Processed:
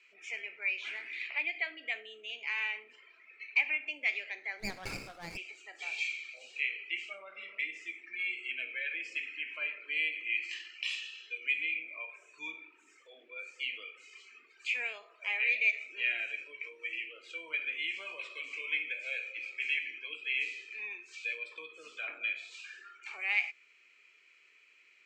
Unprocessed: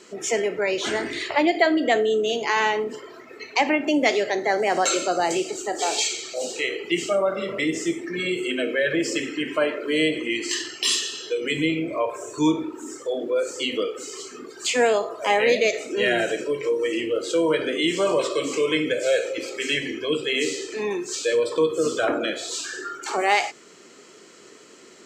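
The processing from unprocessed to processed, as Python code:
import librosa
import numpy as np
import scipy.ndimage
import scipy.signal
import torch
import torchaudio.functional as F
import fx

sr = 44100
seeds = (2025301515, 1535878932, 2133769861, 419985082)

y = fx.bandpass_q(x, sr, hz=2400.0, q=12.0)
y = fx.running_max(y, sr, window=9, at=(4.59, 5.36), fade=0.02)
y = F.gain(torch.from_numpy(y), 2.5).numpy()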